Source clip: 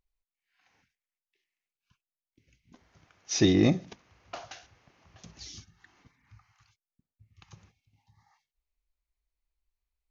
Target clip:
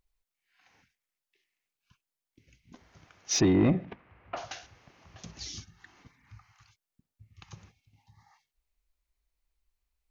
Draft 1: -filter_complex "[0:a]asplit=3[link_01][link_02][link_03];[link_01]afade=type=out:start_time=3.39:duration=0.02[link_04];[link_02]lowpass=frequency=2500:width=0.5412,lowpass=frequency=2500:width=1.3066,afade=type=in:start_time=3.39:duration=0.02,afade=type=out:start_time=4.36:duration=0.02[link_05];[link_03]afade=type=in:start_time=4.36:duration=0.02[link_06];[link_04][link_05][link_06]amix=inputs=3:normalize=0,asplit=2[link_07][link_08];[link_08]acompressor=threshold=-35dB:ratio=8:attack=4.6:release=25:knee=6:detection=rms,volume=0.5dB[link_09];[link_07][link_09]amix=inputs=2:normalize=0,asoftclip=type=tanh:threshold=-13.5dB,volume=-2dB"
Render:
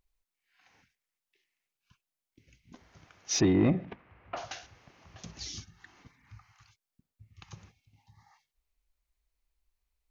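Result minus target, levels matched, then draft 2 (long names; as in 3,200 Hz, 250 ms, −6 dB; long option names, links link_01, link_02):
downward compressor: peak gain reduction +7.5 dB
-filter_complex "[0:a]asplit=3[link_01][link_02][link_03];[link_01]afade=type=out:start_time=3.39:duration=0.02[link_04];[link_02]lowpass=frequency=2500:width=0.5412,lowpass=frequency=2500:width=1.3066,afade=type=in:start_time=3.39:duration=0.02,afade=type=out:start_time=4.36:duration=0.02[link_05];[link_03]afade=type=in:start_time=4.36:duration=0.02[link_06];[link_04][link_05][link_06]amix=inputs=3:normalize=0,asplit=2[link_07][link_08];[link_08]acompressor=threshold=-26.5dB:ratio=8:attack=4.6:release=25:knee=6:detection=rms,volume=0.5dB[link_09];[link_07][link_09]amix=inputs=2:normalize=0,asoftclip=type=tanh:threshold=-13.5dB,volume=-2dB"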